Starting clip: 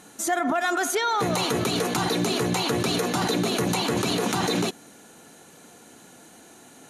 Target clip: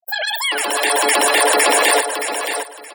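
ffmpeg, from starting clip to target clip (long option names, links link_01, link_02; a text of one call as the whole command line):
ffmpeg -i in.wav -filter_complex "[0:a]asplit=2[link_01][link_02];[link_02]acompressor=threshold=-33dB:ratio=12,volume=1dB[link_03];[link_01][link_03]amix=inputs=2:normalize=0,highpass=frequency=250:poles=1,equalizer=frequency=460:width=2.2:gain=-5.5,asetrate=103194,aresample=44100,bandreject=frequency=6200:width=5.8,afreqshift=19,afftfilt=real='re*gte(hypot(re,im),0.0316)':imag='im*gte(hypot(re,im),0.0316)':win_size=1024:overlap=0.75,dynaudnorm=framelen=330:gausssize=5:maxgain=11dB,asplit=2[link_04][link_05];[link_05]aecho=0:1:622|1244|1866:0.398|0.0796|0.0159[link_06];[link_04][link_06]amix=inputs=2:normalize=0,volume=1.5dB" out.wav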